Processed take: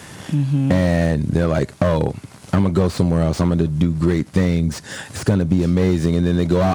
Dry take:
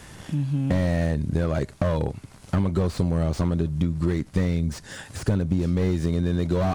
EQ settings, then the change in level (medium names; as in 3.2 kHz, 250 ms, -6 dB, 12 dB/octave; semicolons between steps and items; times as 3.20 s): high-pass 100 Hz; +7.5 dB